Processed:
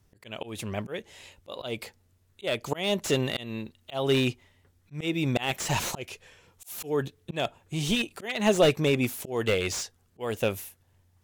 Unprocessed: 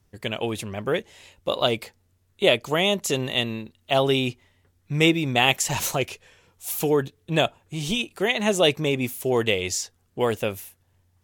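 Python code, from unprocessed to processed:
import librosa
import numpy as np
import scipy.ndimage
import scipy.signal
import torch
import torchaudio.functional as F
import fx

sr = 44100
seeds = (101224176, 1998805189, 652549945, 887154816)

y = fx.auto_swell(x, sr, attack_ms=262.0)
y = fx.slew_limit(y, sr, full_power_hz=180.0)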